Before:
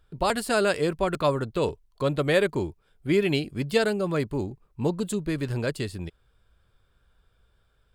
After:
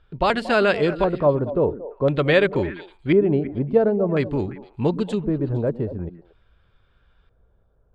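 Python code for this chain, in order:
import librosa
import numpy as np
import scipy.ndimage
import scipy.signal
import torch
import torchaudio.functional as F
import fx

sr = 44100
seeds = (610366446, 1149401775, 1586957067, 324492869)

y = fx.filter_lfo_lowpass(x, sr, shape='square', hz=0.48, low_hz=700.0, high_hz=3100.0, q=1.1)
y = fx.echo_stepped(y, sr, ms=115, hz=240.0, octaves=1.4, feedback_pct=70, wet_db=-9)
y = y * librosa.db_to_amplitude(4.5)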